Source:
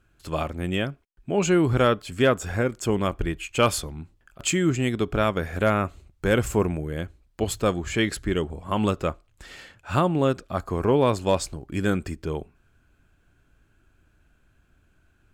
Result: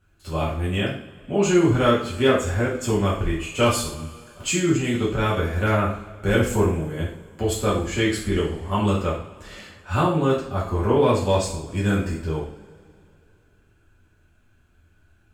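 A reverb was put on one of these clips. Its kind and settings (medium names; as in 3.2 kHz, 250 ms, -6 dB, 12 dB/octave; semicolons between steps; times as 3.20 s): two-slope reverb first 0.48 s, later 2.7 s, from -22 dB, DRR -6.5 dB; trim -5.5 dB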